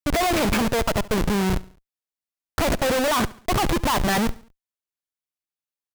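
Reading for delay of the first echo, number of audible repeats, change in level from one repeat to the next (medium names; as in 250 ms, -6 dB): 70 ms, 3, -7.0 dB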